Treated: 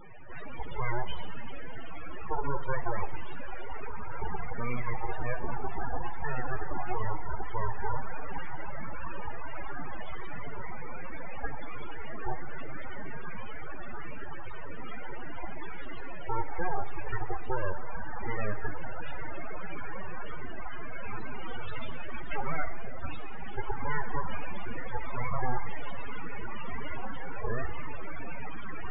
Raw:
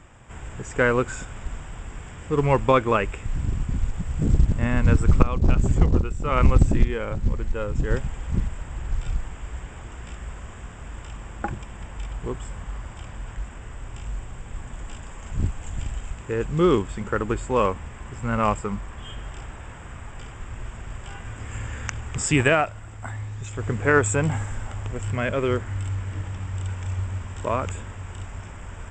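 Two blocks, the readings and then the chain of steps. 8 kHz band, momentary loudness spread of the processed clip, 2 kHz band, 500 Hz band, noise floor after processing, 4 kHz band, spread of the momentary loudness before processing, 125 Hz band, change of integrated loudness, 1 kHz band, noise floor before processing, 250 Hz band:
below −40 dB, 9 LU, −9.0 dB, −14.0 dB, −28 dBFS, −11.0 dB, 19 LU, −15.5 dB, −14.5 dB, −7.0 dB, −40 dBFS, −16.0 dB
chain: variable-slope delta modulation 16 kbit/s
elliptic high-pass filter 370 Hz, stop band 40 dB
in parallel at 0 dB: downward compressor 20 to 1, threshold −35 dBFS, peak gain reduction 19 dB
on the sum: brickwall limiter −20.5 dBFS, peak gain reduction 11.5 dB
asymmetric clip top −34 dBFS, bottom −23.5 dBFS
feedback delay with all-pass diffusion 1,603 ms, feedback 77%, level −9 dB
full-wave rectification
spectral peaks only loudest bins 16
four-comb reverb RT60 1.4 s, DRR 13.5 dB
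level +6.5 dB

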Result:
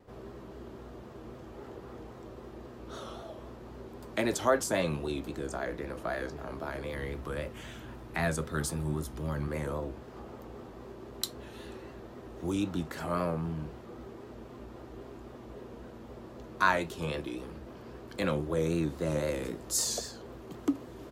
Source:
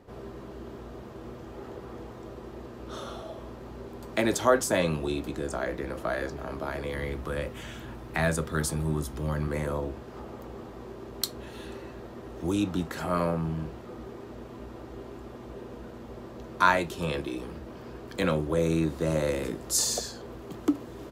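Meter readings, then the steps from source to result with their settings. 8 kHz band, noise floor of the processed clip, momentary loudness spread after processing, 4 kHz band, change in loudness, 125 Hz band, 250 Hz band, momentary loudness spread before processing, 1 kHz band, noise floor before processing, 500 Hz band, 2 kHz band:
−4.0 dB, −48 dBFS, 18 LU, −4.0 dB, −4.0 dB, −4.0 dB, −4.0 dB, 18 LU, −4.5 dB, −44 dBFS, −4.0 dB, −3.5 dB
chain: pitch vibrato 3.8 Hz 70 cents
level −4 dB

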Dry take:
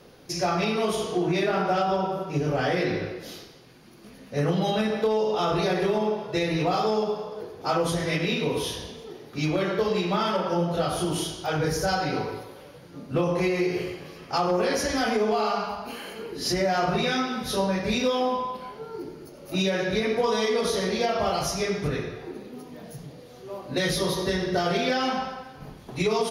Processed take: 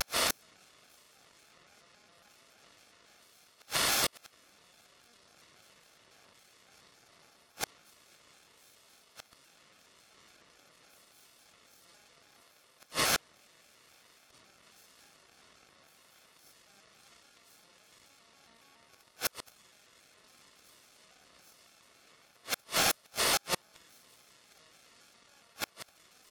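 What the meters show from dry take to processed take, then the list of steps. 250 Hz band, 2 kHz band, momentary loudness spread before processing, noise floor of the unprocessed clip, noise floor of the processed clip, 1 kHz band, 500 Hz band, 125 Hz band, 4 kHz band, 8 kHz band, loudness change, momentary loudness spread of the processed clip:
−25.0 dB, −9.0 dB, 15 LU, −47 dBFS, −65 dBFS, −15.5 dB, −22.5 dB, −25.0 dB, −6.0 dB, −1.0 dB, −5.0 dB, 13 LU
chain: compressor on every frequency bin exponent 0.4
high-pass filter 630 Hz 24 dB per octave
spectral tilt +3 dB per octave
on a send: feedback echo with a low-pass in the loop 64 ms, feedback 73%, low-pass 2,200 Hz, level −6 dB
on the sum: harmonic generator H 2 −28 dB, 3 −13 dB, 4 −8 dB, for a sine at −4 dBFS
in parallel at 0 dB: compressor whose output falls as the input rises −29 dBFS, ratio −0.5
on the sum: notch comb filter 880 Hz
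gate on every frequency bin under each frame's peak −25 dB strong
gate with flip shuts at −9 dBFS, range −40 dB
soft clipping −15.5 dBFS, distortion −15 dB
pitch modulation by a square or saw wave square 3.6 Hz, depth 160 cents

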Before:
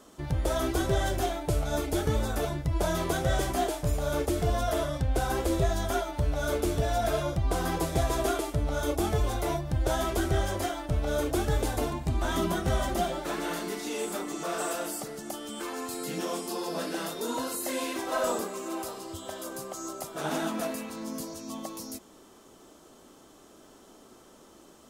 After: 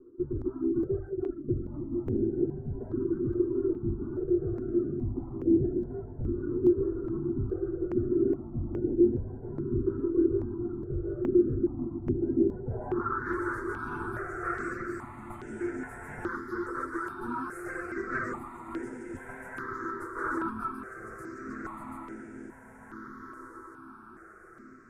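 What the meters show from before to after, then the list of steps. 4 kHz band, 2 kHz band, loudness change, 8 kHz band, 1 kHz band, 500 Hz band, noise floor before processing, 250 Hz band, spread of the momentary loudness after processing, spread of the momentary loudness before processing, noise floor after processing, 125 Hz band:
below −30 dB, −1.5 dB, −1.0 dB, below −20 dB, −6.0 dB, −0.5 dB, −55 dBFS, +4.0 dB, 16 LU, 9 LU, −50 dBFS, −5.0 dB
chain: lower of the sound and its delayed copy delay 8.2 ms
gain into a clipping stage and back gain 26.5 dB
reverb reduction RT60 1.8 s
drawn EQ curve 180 Hz 0 dB, 380 Hz +9 dB, 570 Hz −12 dB, 1,400 Hz +9 dB, 2,900 Hz −25 dB, 9,000 Hz +13 dB
on a send: feedback delay with all-pass diffusion 1,527 ms, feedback 44%, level −5 dB
on the sum: low-pass filter sweep 330 Hz → 2,300 Hz, 0:12.60–0:13.33
step-sequenced phaser 2.4 Hz 740–4,200 Hz

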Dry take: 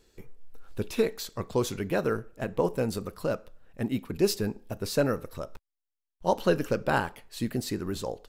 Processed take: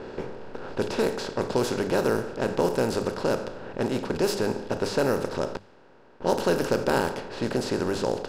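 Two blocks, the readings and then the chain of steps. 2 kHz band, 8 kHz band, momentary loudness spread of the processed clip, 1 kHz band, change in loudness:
+3.5 dB, +1.5 dB, 8 LU, +3.5 dB, +3.0 dB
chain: compressor on every frequency bin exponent 0.4
low-pass that shuts in the quiet parts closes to 1,900 Hz, open at −15.5 dBFS
mains-hum notches 50/100/150/200 Hz
level −3.5 dB

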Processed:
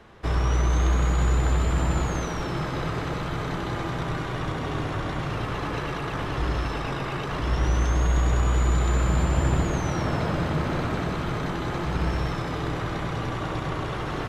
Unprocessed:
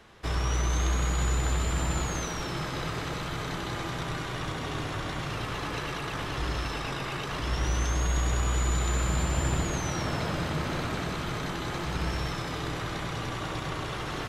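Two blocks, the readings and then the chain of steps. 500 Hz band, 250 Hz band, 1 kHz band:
+5.0 dB, +5.5 dB, +4.0 dB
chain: high-shelf EQ 2,400 Hz −10.5 dB
level +5.5 dB

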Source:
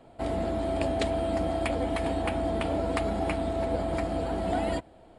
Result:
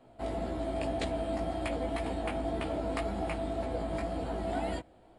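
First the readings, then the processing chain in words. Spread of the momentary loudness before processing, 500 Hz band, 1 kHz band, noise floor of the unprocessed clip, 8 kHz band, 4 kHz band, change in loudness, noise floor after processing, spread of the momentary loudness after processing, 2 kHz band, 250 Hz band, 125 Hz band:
2 LU, −5.5 dB, −5.0 dB, −54 dBFS, −5.0 dB, −5.0 dB, −5.0 dB, −59 dBFS, 2 LU, −5.0 dB, −5.0 dB, −5.5 dB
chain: chorus effect 1.9 Hz, delay 15.5 ms, depth 3.9 ms
level −2 dB

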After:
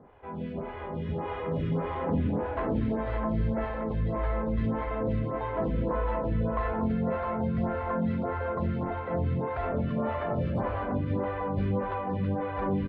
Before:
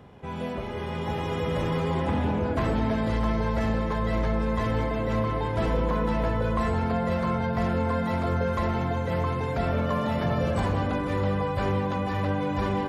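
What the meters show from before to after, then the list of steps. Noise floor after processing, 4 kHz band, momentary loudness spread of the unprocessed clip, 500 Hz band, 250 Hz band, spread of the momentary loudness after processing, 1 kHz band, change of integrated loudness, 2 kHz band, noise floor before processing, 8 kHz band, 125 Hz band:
−37 dBFS, below −10 dB, 2 LU, −3.0 dB, −2.5 dB, 4 LU, −4.0 dB, −3.5 dB, −7.0 dB, −32 dBFS, can't be measured, −3.5 dB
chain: high-frequency loss of the air 430 metres
slap from a distant wall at 41 metres, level −6 dB
phaser with staggered stages 1.7 Hz

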